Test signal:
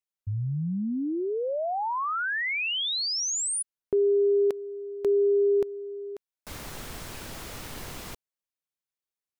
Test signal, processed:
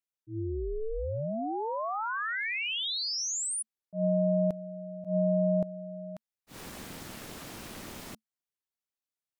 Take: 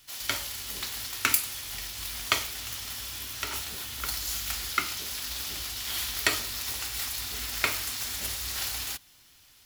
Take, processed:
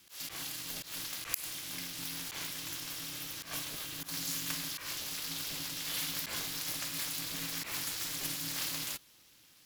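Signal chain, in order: Chebyshev shaper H 6 -44 dB, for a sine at -3.5 dBFS; ring modulator 220 Hz; slow attack 122 ms; trim -1 dB

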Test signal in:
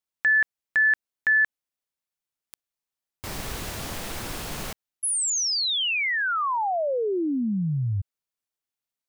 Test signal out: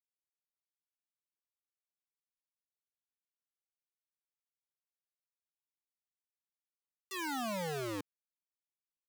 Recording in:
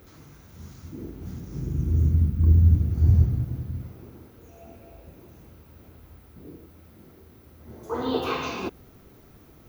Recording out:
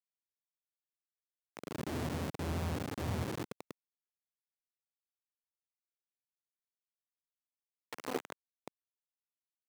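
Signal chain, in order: loudest bins only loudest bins 64; boxcar filter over 28 samples; small samples zeroed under -23 dBFS; high-pass 200 Hz 12 dB/octave; trim -7 dB

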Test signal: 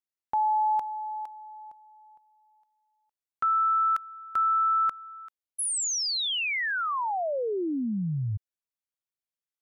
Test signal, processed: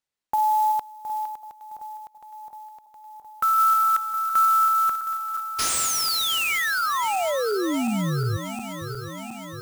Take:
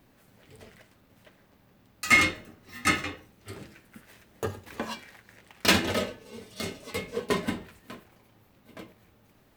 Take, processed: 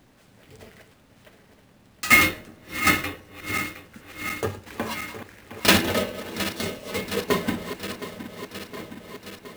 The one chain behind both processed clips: backward echo that repeats 358 ms, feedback 82%, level -12 dB; sample-rate reducer 16 kHz, jitter 20%; trim +4 dB

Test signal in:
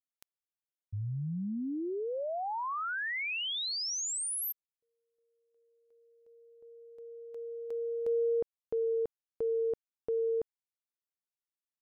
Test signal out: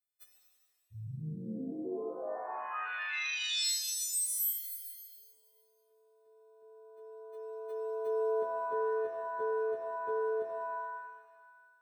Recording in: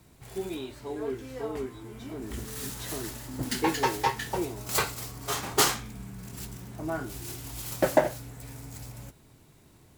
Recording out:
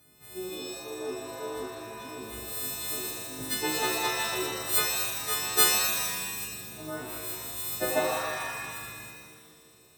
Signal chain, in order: partials quantised in pitch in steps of 3 st; comb of notches 1 kHz; pitch-shifted reverb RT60 1.5 s, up +7 st, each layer -2 dB, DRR 2 dB; trim -6 dB

